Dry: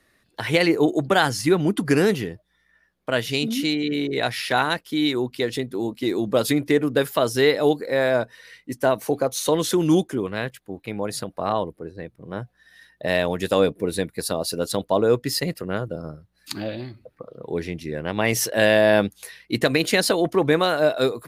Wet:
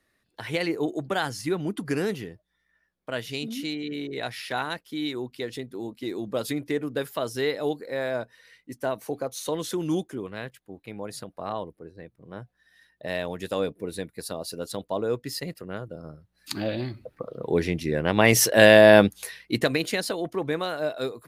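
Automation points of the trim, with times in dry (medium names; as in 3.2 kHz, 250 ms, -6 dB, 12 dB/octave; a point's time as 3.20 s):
15.95 s -8.5 dB
16.87 s +3.5 dB
19.17 s +3.5 dB
20.05 s -9 dB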